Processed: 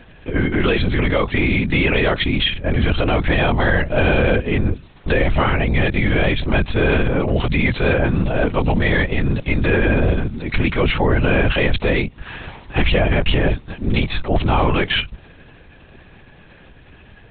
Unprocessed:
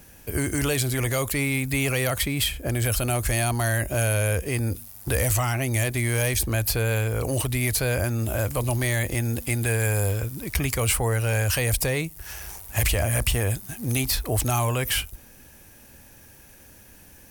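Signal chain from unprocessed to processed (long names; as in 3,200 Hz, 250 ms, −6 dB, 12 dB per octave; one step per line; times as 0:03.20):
linear-prediction vocoder at 8 kHz whisper
level +8 dB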